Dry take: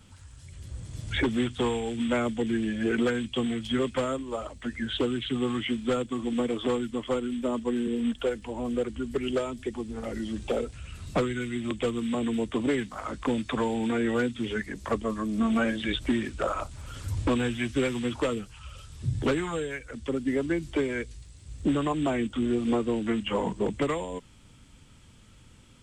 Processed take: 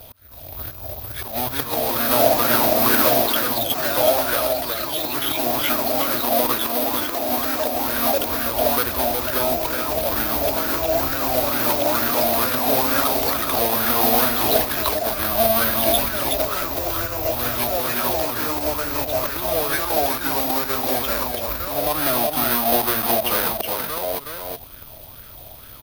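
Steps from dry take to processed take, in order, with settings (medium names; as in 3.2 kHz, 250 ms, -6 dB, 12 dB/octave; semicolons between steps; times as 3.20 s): square wave that keeps the level; slow attack 489 ms; compression 2:1, threshold -33 dBFS, peak gain reduction 8.5 dB; high-order bell 4.5 kHz +10 dB 1.1 oct; careless resampling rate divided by 3×, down filtered, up zero stuff; band-stop 5.6 kHz, Q 14; delay 370 ms -4.5 dB; ever faster or slower copies 314 ms, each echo +2 st, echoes 3; graphic EQ with 31 bands 200 Hz -9 dB, 630 Hz +9 dB, 2.5 kHz +6 dB; sweeping bell 2.2 Hz 650–1500 Hz +13 dB; trim +1.5 dB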